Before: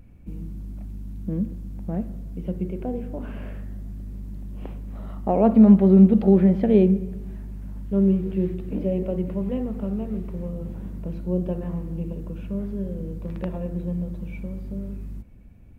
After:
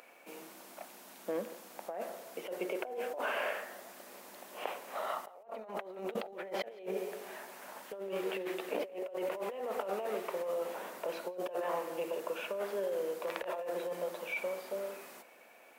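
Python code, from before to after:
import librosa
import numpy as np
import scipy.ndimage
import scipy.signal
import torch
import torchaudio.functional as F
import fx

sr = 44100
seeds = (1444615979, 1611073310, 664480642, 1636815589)

p1 = scipy.signal.sosfilt(scipy.signal.butter(4, 580.0, 'highpass', fs=sr, output='sos'), x)
p2 = fx.over_compress(p1, sr, threshold_db=-46.0, ratio=-1.0)
p3 = p2 + fx.echo_single(p2, sr, ms=171, db=-23.5, dry=0)
y = p3 * 10.0 ** (6.0 / 20.0)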